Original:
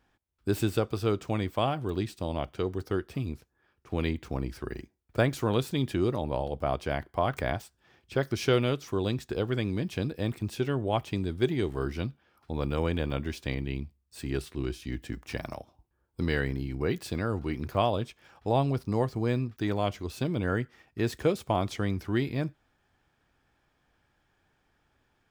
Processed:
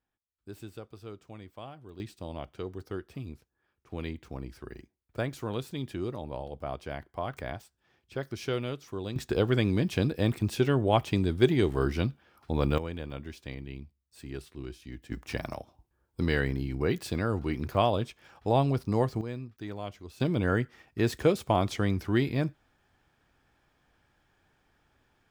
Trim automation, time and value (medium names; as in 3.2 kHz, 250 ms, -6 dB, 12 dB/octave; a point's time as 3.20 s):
-16.5 dB
from 2.00 s -7 dB
from 9.16 s +4 dB
from 12.78 s -8 dB
from 15.11 s +1 dB
from 19.21 s -9.5 dB
from 20.20 s +2 dB